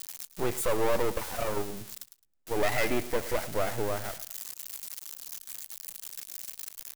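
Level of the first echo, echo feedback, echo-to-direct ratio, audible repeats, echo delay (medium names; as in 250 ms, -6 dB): -16.0 dB, 24%, -16.0 dB, 2, 108 ms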